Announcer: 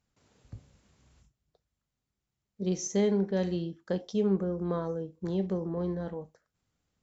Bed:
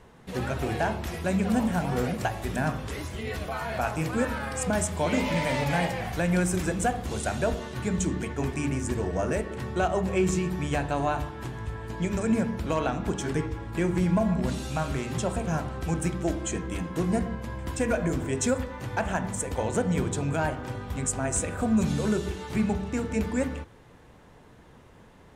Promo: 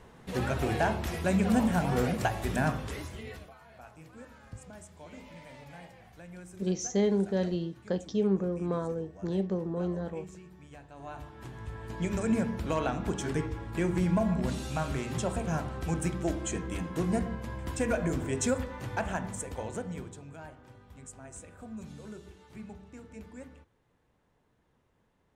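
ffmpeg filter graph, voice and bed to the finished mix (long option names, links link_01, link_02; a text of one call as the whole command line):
ffmpeg -i stem1.wav -i stem2.wav -filter_complex "[0:a]adelay=4000,volume=0dB[link_01];[1:a]volume=19dB,afade=type=out:start_time=2.64:duration=0.91:silence=0.0794328,afade=type=in:start_time=10.94:duration=1.14:silence=0.105925,afade=type=out:start_time=18.82:duration=1.4:silence=0.158489[link_02];[link_01][link_02]amix=inputs=2:normalize=0" out.wav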